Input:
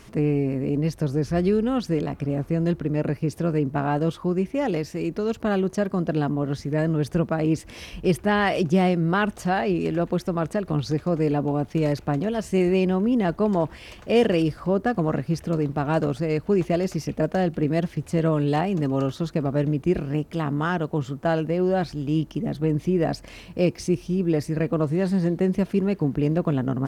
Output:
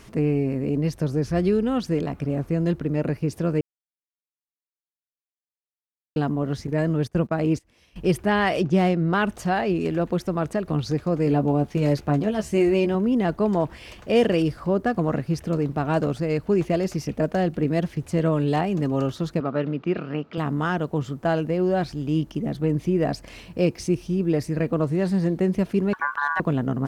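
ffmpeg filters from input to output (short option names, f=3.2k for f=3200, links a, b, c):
-filter_complex "[0:a]asettb=1/sr,asplit=3[a][b][c];[a]atrim=end=6.674[d];[b]atrim=start=6.67:end=7.96,asetpts=PTS-STARTPTS,afade=t=in:d=0.004:c=qsin,afade=t=out:st=1.286:d=0.004:c=qsin,agate=range=-20dB:threshold=-30dB:ratio=16:release=100:detection=peak[e];[c]atrim=start=7.956[f];[d][e]acrossfade=d=0.004:c1=hsin:c2=qsin[g];[g][f]acrossfade=d=0.004:c1=qsin:c2=hsin,asettb=1/sr,asplit=3[h][i][j];[h]atrim=end=8.604[k];[i]atrim=start=8.6:end=9.15,asetpts=PTS-STARTPTS,afade=t=in:d=0.004:c=qsin,afade=t=out:st=0.546:d=0.004:c=qsin,adynamicsmooth=sensitivity=5.5:basefreq=4.5k[l];[j]atrim=start=9.146[m];[k][l]acrossfade=d=0.004:c1=hsin:c2=qsin[n];[n][m]acrossfade=d=0.004:c1=qsin:c2=hsin,asettb=1/sr,asplit=3[o][p][q];[o]atrim=end=11.254[r];[p]atrim=start=11.25:end=12.95,asetpts=PTS-STARTPTS,afade=t=in:d=0.004:c=qsin,afade=t=out:st=1.696:d=0.004:c=qsin,asplit=2[s][t];[t]adelay=14,volume=-6.5dB[u];[s][u]amix=inputs=2:normalize=0,atrim=end_sample=74970[v];[q]atrim=start=12.946[w];[r][v]acrossfade=d=0.004:c1=hsin:c2=qsin[x];[x][w]acrossfade=d=0.004:c1=qsin:c2=hsin,asettb=1/sr,asplit=3[y][z][aa];[y]atrim=end=19.404[ab];[z]atrim=start=19.4:end=20.38,asetpts=PTS-STARTPTS,afade=t=in:d=0.004:c=qsin,afade=t=out:st=0.976:d=0.004:c=qsin,highpass=190,equalizer=f=330:t=q:w=4:g=-3,equalizer=f=1.3k:t=q:w=4:g=9,equalizer=f=2.8k:t=q:w=4:g=3,lowpass=f=4.5k:w=0.5412,lowpass=f=4.5k:w=1.3066[ac];[aa]atrim=start=20.376[ad];[ab][ac]acrossfade=d=0.004:c1=hsin:c2=qsin[ae];[ae][ad]acrossfade=d=0.004:c1=qsin:c2=hsin,asettb=1/sr,asplit=3[af][ag][ah];[af]atrim=end=25.934[ai];[ag]atrim=start=25.93:end=26.4,asetpts=PTS-STARTPTS,afade=t=in:d=0.004:c=qsin,afade=t=out:st=0.466:d=0.004:c=qsin,aeval=exprs='val(0)*sin(2*PI*1300*n/s)':c=same[aj];[ah]atrim=start=26.396[ak];[ai][aj]acrossfade=d=0.004:c1=hsin:c2=qsin[al];[al][ak]acrossfade=d=0.004:c1=qsin:c2=hsin,asplit=3[am][an][ao];[am]atrim=end=3.61,asetpts=PTS-STARTPTS,afade=t=out:st=3.606:d=0.004:c=hsin[ap];[an]atrim=start=3.61:end=6.16,asetpts=PTS-STARTPTS,volume=0[aq];[ao]atrim=start=6.16,asetpts=PTS-STARTPTS,afade=t=in:d=0.004:c=hsin[ar];[ap][aq][ar]concat=n=3:v=0:a=1"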